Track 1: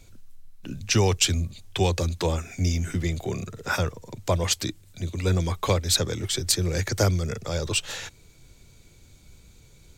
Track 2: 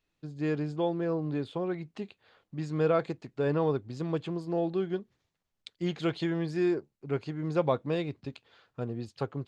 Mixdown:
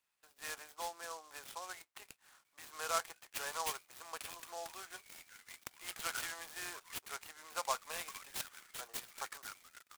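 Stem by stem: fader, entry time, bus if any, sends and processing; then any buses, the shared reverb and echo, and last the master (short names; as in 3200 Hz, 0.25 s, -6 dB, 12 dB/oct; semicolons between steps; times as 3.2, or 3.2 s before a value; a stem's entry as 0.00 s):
-12.5 dB, 2.45 s, no send, HPF 1300 Hz 24 dB/oct; high shelf 3900 Hz -11 dB
-0.5 dB, 0.00 s, no send, dry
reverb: off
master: HPF 900 Hz 24 dB/oct; noise-modulated delay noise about 5600 Hz, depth 0.068 ms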